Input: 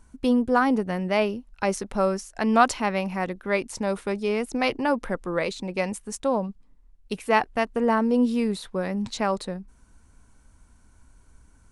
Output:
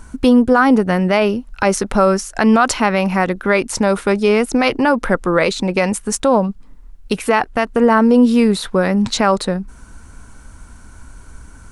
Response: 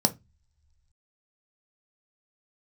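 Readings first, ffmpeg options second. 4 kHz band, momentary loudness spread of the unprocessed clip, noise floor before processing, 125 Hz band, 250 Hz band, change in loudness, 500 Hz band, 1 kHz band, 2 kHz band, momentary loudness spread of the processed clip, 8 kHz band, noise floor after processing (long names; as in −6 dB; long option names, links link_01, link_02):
+10.5 dB, 8 LU, −57 dBFS, +11.5 dB, +10.5 dB, +10.0 dB, +10.0 dB, +8.0 dB, +10.0 dB, 7 LU, +12.5 dB, −40 dBFS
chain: -filter_complex "[0:a]equalizer=frequency=1400:width=3.1:gain=4.5,asplit=2[link_01][link_02];[link_02]acompressor=threshold=-35dB:ratio=6,volume=1.5dB[link_03];[link_01][link_03]amix=inputs=2:normalize=0,alimiter=level_in=12dB:limit=-1dB:release=50:level=0:latency=1,volume=-2.5dB"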